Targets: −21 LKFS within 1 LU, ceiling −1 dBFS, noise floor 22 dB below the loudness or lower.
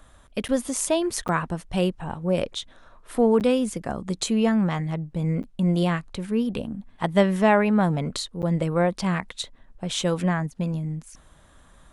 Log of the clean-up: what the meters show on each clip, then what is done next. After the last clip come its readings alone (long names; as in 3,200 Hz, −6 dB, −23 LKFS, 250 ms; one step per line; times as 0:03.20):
number of dropouts 5; longest dropout 8.5 ms; integrated loudness −24.5 LKFS; sample peak −6.0 dBFS; target loudness −21.0 LKFS
→ repair the gap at 0:00.48/0:01.28/0:03.40/0:05.43/0:08.42, 8.5 ms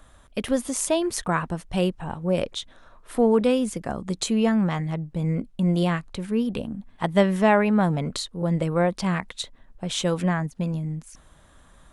number of dropouts 0; integrated loudness −24.5 LKFS; sample peak −6.0 dBFS; target loudness −21.0 LKFS
→ level +3.5 dB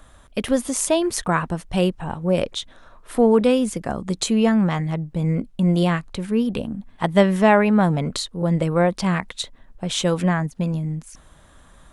integrated loudness −21.0 LKFS; sample peak −2.5 dBFS; background noise floor −51 dBFS